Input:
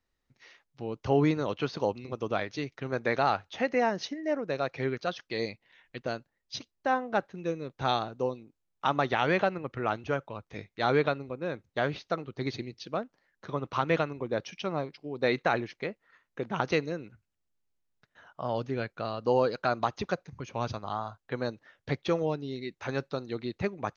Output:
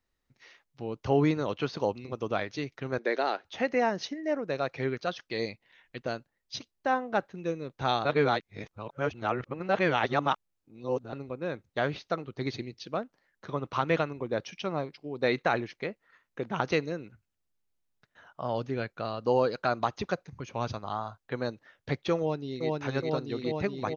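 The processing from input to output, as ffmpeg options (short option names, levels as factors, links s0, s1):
-filter_complex "[0:a]asettb=1/sr,asplit=3[s0][s1][s2];[s0]atrim=end=2.984[s3];[s1]atrim=start=2.98:end=3.45,asetpts=PTS-STARTPTS,afade=t=in:d=0.004:c=qsin,afade=t=out:st=0.466:d=0.004:c=qsin,highpass=f=280:w=0.5412,highpass=f=280:w=1.3066,equalizer=f=370:t=q:w=4:g=4,equalizer=f=830:t=q:w=4:g=-5,equalizer=f=1200:t=q:w=4:g=-7,equalizer=f=2500:t=q:w=4:g=-4,lowpass=f=5900:w=0.5412,lowpass=f=5900:w=1.3066[s4];[s2]atrim=start=3.446[s5];[s3][s4]acrossfade=d=0.004:c1=hsin:c2=qsin[s6];[s6][s5]acrossfade=d=0.004:c1=qsin:c2=hsin,asplit=2[s7][s8];[s8]afade=t=in:st=22.18:d=0.01,afade=t=out:st=22.67:d=0.01,aecho=0:1:420|840|1260|1680|2100|2520|2940|3360|3780|4200|4620|5040:0.891251|0.757563|0.643929|0.547339|0.465239|0.395453|0.336135|0.285715|0.242857|0.206429|0.175464|0.149145[s9];[s7][s9]amix=inputs=2:normalize=0,asplit=3[s10][s11][s12];[s10]atrim=end=8.052[s13];[s11]atrim=start=8.048:end=11.132,asetpts=PTS-STARTPTS,areverse[s14];[s12]atrim=start=11.128[s15];[s13][s14]acrossfade=d=0.004:c1=hsin:c2=hsin[s16];[s16][s15]acrossfade=d=0.004:c1=hsin:c2=hsin"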